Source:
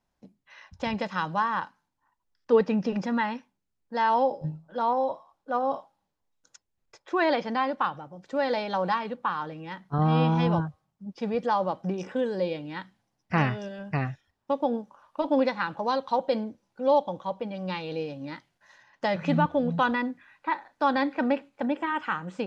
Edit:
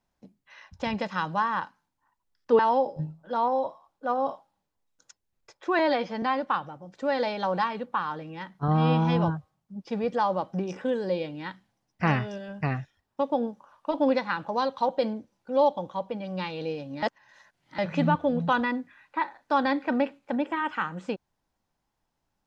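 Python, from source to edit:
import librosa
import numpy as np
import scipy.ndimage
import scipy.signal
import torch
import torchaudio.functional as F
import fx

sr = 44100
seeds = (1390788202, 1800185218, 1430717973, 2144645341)

y = fx.edit(x, sr, fx.cut(start_s=2.59, length_s=1.45),
    fx.stretch_span(start_s=7.24, length_s=0.29, factor=1.5),
    fx.reverse_span(start_s=18.33, length_s=0.76), tone=tone)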